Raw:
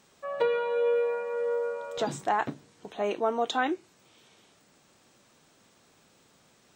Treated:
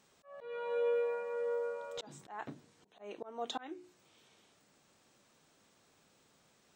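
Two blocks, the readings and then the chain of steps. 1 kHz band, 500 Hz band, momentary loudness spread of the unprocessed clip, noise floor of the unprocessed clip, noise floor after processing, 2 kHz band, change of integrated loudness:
-14.5 dB, -8.5 dB, 11 LU, -63 dBFS, -70 dBFS, -13.5 dB, -9.5 dB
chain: hum notches 60/120/180/240/300/360 Hz; slow attack 336 ms; trim -6.5 dB

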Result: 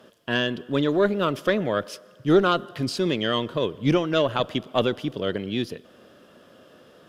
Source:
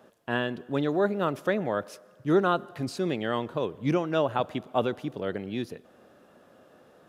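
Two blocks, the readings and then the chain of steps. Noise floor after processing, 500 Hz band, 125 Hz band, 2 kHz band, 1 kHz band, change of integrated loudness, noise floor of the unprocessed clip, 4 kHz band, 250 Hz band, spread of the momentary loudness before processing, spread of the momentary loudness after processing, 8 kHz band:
-53 dBFS, +4.0 dB, +4.5 dB, +5.0 dB, +2.0 dB, +4.5 dB, -58 dBFS, +11.0 dB, +4.5 dB, 9 LU, 8 LU, +6.5 dB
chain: graphic EQ with 31 bands 800 Hz -8 dB, 3.15 kHz +9 dB, 5 kHz +6 dB; Chebyshev shaper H 2 -14 dB, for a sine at -11.5 dBFS; trim +5 dB

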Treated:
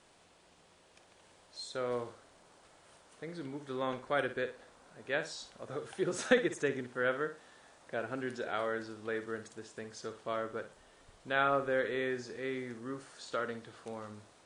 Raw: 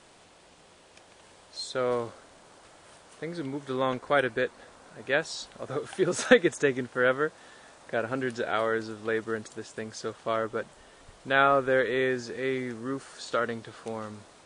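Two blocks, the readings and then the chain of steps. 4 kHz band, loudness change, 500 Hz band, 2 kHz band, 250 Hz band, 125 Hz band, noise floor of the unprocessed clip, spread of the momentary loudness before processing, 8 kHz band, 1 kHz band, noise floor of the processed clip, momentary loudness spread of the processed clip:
-7.5 dB, -7.5 dB, -7.5 dB, -7.5 dB, -7.5 dB, -8.0 dB, -56 dBFS, 16 LU, -7.5 dB, -7.5 dB, -64 dBFS, 16 LU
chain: flutter echo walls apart 9.8 m, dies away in 0.31 s; trim -8 dB

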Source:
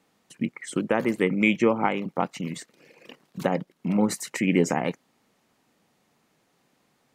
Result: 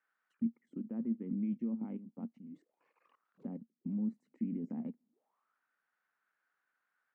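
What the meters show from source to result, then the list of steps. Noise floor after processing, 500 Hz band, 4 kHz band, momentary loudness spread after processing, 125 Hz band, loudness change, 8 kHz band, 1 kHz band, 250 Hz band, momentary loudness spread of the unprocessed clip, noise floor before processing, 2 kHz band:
under -85 dBFS, -27.0 dB, under -40 dB, 12 LU, -14.5 dB, -14.0 dB, under -40 dB, -32.5 dB, -11.0 dB, 12 LU, -69 dBFS, under -40 dB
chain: level held to a coarse grid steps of 14 dB; auto-wah 230–1600 Hz, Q 8, down, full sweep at -36.5 dBFS; trim +1 dB

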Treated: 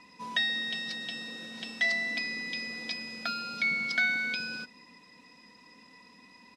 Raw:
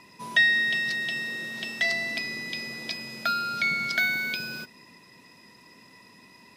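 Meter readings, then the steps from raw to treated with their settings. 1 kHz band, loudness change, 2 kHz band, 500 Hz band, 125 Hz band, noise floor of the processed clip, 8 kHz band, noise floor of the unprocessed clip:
-8.0 dB, -5.0 dB, -5.0 dB, -5.5 dB, -7.5 dB, -57 dBFS, -6.0 dB, -54 dBFS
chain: low-pass 7.8 kHz 12 dB/octave; comb 4 ms, depth 58%; trim -5 dB

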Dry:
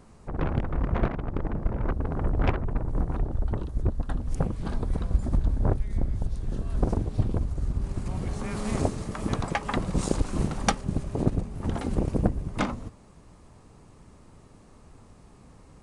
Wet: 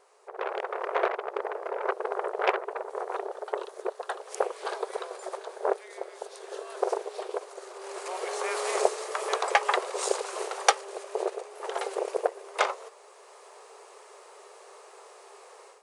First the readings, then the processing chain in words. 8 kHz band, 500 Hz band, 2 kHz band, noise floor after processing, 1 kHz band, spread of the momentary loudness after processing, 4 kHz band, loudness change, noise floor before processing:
+5.0 dB, +5.5 dB, +6.0 dB, -52 dBFS, +6.0 dB, 24 LU, +5.5 dB, -1.5 dB, -53 dBFS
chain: level rider gain up to 12 dB; brick-wall FIR high-pass 370 Hz; trim -2.5 dB

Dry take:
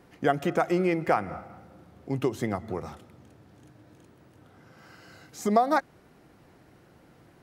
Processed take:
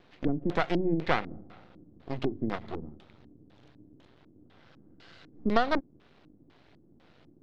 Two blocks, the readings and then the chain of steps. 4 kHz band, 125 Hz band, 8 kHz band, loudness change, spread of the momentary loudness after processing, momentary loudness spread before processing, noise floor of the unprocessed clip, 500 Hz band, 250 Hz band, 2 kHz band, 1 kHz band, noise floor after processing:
+3.0 dB, -2.0 dB, under -15 dB, -3.5 dB, 14 LU, 14 LU, -58 dBFS, -5.0 dB, -1.5 dB, -1.0 dB, -5.5 dB, -61 dBFS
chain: hum notches 60/120/180 Hz; half-wave rectifier; LFO low-pass square 2 Hz 290–3800 Hz

